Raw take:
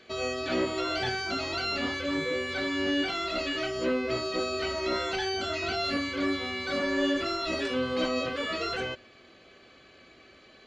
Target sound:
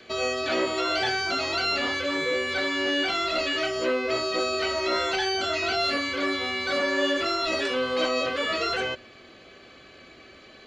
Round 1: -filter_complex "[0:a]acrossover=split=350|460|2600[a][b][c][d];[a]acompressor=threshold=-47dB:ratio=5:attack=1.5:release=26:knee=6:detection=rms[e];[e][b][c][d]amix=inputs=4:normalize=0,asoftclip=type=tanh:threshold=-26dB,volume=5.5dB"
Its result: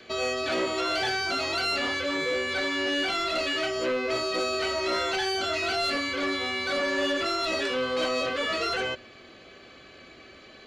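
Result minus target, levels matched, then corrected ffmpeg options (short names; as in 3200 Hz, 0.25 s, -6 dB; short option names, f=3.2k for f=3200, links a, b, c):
soft clip: distortion +17 dB
-filter_complex "[0:a]acrossover=split=350|460|2600[a][b][c][d];[a]acompressor=threshold=-47dB:ratio=5:attack=1.5:release=26:knee=6:detection=rms[e];[e][b][c][d]amix=inputs=4:normalize=0,asoftclip=type=tanh:threshold=-15.5dB,volume=5.5dB"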